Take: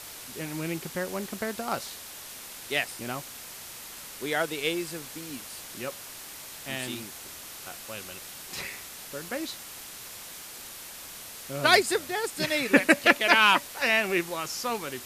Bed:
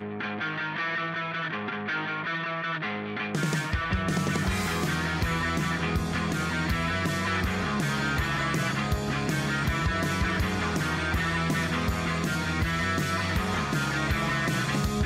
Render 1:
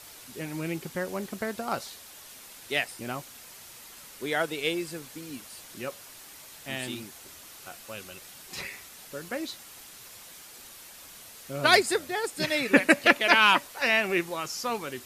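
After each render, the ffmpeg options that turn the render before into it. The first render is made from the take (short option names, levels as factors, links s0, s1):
-af "afftdn=nr=6:nf=-43"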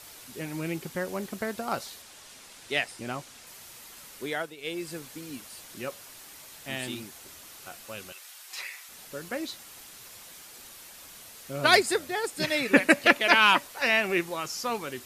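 -filter_complex "[0:a]asettb=1/sr,asplit=3[s0][s1][s2];[s0]atrim=end=2.024[s3];[s1]atrim=start=2.02:end=3.47,asetpts=PTS-STARTPTS,afade=t=in:d=0.004:c=qsin,afade=t=out:st=1.446:d=0.004:c=qsin,lowpass=9600[s4];[s2]atrim=start=3.466[s5];[s3][s4]acrossfade=d=0.004:c1=hsin:c2=qsin[s6];[s6][s5]acrossfade=d=0.004:c1=qsin:c2=hsin,asettb=1/sr,asplit=3[s7][s8][s9];[s7]atrim=end=8.124[s10];[s8]atrim=start=8.12:end=8.89,asetpts=PTS-STARTPTS,afade=t=in:d=0.004:c=qsin,afade=t=out:st=0.766:d=0.004:c=qsin,highpass=900[s11];[s9]atrim=start=8.886[s12];[s10][s11]acrossfade=d=0.004:c1=hsin:c2=qsin[s13];[s13][s12]acrossfade=d=0.004:c1=qsin:c2=hsin,asplit=2[s14][s15];[s14]atrim=end=4.56,asetpts=PTS-STARTPTS,afade=t=out:st=4.19:d=0.37:silence=0.211349[s16];[s15]atrim=start=4.56,asetpts=PTS-STARTPTS,afade=t=in:d=0.37:silence=0.211349[s17];[s16][s17]concat=n=2:v=0:a=1"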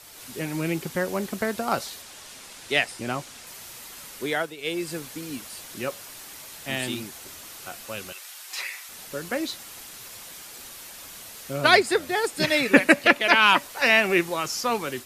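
-filter_complex "[0:a]acrossover=split=340|4500[s0][s1][s2];[s2]alimiter=level_in=1.41:limit=0.0631:level=0:latency=1:release=286,volume=0.708[s3];[s0][s1][s3]amix=inputs=3:normalize=0,dynaudnorm=f=120:g=3:m=1.88"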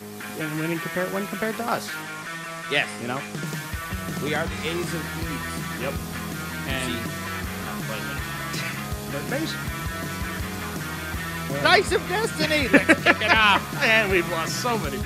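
-filter_complex "[1:a]volume=0.668[s0];[0:a][s0]amix=inputs=2:normalize=0"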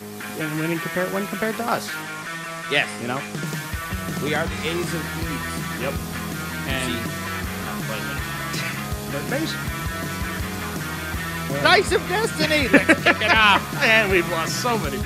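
-af "volume=1.33,alimiter=limit=0.794:level=0:latency=1"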